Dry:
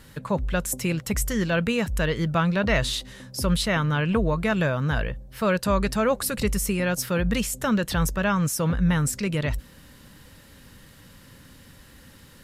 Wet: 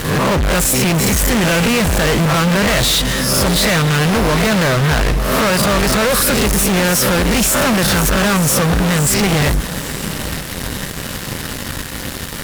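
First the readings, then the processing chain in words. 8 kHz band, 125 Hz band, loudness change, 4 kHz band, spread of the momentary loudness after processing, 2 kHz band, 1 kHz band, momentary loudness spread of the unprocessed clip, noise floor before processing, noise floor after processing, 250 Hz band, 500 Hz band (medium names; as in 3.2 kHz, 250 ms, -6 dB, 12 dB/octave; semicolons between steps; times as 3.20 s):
+15.0 dB, +9.5 dB, +10.0 dB, +15.5 dB, 11 LU, +11.5 dB, +11.5 dB, 5 LU, -50 dBFS, -26 dBFS, +9.0 dB, +9.5 dB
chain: reverse spectral sustain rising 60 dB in 0.44 s; fuzz box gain 44 dB, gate -47 dBFS; echo that smears into a reverb 879 ms, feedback 45%, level -14 dB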